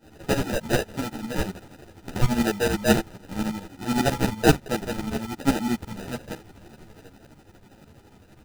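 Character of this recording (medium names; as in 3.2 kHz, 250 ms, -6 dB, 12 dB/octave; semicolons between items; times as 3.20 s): phasing stages 4, 1.3 Hz, lowest notch 350–1300 Hz; tremolo saw up 12 Hz, depth 85%; aliases and images of a low sample rate 1.1 kHz, jitter 0%; a shimmering, thickened sound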